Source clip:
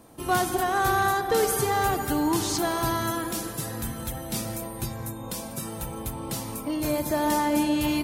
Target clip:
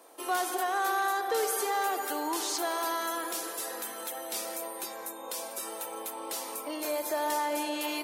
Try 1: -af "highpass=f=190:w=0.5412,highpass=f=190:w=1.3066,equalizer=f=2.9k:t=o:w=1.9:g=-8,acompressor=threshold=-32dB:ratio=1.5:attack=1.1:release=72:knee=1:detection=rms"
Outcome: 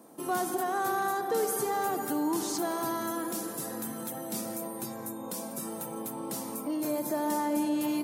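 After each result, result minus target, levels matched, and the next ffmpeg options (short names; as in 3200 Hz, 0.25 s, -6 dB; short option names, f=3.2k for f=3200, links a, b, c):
250 Hz band +8.5 dB; 4000 Hz band -6.5 dB
-af "highpass=f=400:w=0.5412,highpass=f=400:w=1.3066,equalizer=f=2.9k:t=o:w=1.9:g=-8,acompressor=threshold=-32dB:ratio=1.5:attack=1.1:release=72:knee=1:detection=rms"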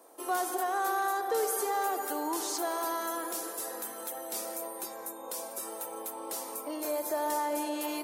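4000 Hz band -4.5 dB
-af "highpass=f=400:w=0.5412,highpass=f=400:w=1.3066,acompressor=threshold=-32dB:ratio=1.5:attack=1.1:release=72:knee=1:detection=rms"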